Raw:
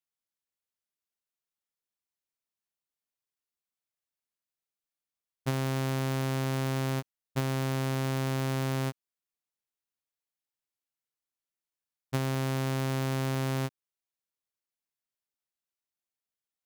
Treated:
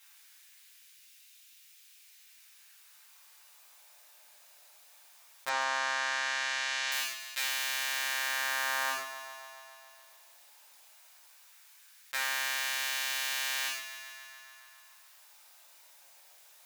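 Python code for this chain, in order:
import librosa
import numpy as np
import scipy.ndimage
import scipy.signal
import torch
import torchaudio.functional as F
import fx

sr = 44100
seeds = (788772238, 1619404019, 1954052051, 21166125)

y = fx.peak_eq(x, sr, hz=120.0, db=-11.5, octaves=0.28)
y = fx.rev_gated(y, sr, seeds[0], gate_ms=160, shape='falling', drr_db=-8.0)
y = fx.rider(y, sr, range_db=10, speed_s=0.5)
y = fx.lowpass(y, sr, hz=7100.0, slope=24, at=(5.49, 6.92))
y = fx.echo_thinned(y, sr, ms=140, feedback_pct=58, hz=390.0, wet_db=-19)
y = fx.filter_lfo_highpass(y, sr, shape='sine', hz=0.17, low_hz=690.0, high_hz=2500.0, q=1.3)
y = fx.env_flatten(y, sr, amount_pct=50)
y = y * librosa.db_to_amplitude(-2.5)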